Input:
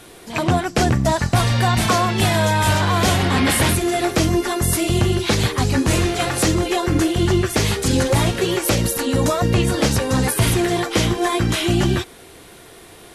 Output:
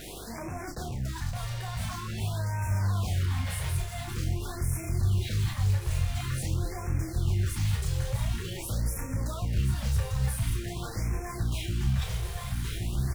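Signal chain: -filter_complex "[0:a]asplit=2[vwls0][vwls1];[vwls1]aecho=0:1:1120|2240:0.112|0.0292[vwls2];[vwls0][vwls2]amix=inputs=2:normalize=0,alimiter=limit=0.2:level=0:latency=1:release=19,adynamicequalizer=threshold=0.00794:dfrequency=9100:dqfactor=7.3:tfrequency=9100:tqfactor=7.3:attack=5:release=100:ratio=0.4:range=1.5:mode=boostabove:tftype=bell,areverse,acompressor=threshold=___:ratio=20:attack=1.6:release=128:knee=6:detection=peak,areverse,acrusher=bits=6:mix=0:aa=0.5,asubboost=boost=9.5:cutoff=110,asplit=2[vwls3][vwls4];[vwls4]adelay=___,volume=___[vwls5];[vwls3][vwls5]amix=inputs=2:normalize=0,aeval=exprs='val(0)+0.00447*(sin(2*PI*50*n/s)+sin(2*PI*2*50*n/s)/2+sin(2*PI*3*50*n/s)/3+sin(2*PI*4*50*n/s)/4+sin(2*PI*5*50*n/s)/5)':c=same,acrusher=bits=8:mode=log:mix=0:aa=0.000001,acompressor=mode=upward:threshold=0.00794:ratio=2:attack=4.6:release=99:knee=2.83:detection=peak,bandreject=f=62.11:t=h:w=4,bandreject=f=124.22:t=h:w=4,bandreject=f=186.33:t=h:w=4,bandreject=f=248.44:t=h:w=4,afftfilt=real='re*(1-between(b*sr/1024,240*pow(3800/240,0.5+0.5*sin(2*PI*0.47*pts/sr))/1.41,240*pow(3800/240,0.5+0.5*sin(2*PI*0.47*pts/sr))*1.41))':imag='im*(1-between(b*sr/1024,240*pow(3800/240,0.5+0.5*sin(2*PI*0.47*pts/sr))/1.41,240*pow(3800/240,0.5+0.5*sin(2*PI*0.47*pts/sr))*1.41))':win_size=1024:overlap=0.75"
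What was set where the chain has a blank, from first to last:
0.0224, 31, 0.531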